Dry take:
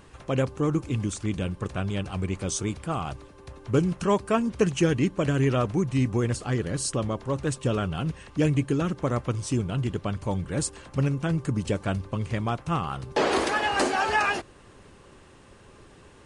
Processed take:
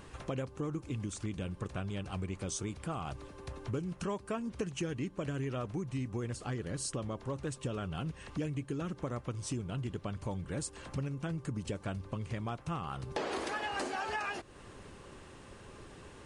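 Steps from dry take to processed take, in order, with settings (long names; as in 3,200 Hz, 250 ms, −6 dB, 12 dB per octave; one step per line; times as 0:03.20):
downward compressor 4 to 1, threshold −36 dBFS, peak gain reduction 16.5 dB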